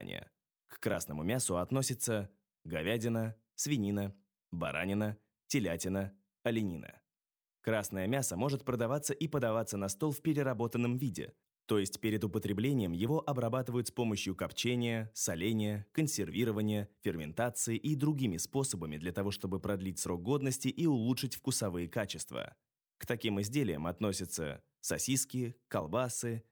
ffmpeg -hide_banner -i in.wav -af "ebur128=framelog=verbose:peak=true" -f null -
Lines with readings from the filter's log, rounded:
Integrated loudness:
  I:         -35.4 LUFS
  Threshold: -45.7 LUFS
Loudness range:
  LRA:         2.4 LU
  Threshold: -55.7 LUFS
  LRA low:   -37.0 LUFS
  LRA high:  -34.7 LUFS
True peak:
  Peak:      -17.3 dBFS